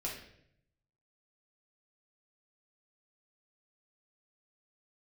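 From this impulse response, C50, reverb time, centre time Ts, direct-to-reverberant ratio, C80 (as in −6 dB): 4.5 dB, 0.70 s, 37 ms, −4.5 dB, 8.0 dB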